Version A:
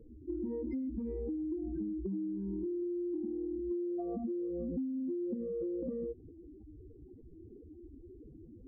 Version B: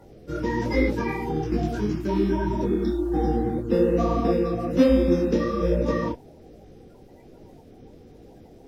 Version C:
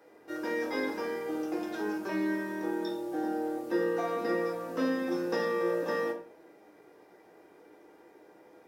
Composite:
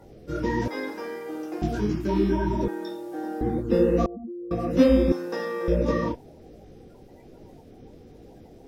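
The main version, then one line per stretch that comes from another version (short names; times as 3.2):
B
0.68–1.62 from C
2.68–3.41 from C
4.06–4.51 from A
5.12–5.68 from C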